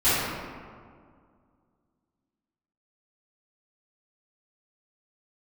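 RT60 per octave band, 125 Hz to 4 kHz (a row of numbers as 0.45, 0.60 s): 2.3, 2.5, 2.1, 2.0, 1.5, 1.0 s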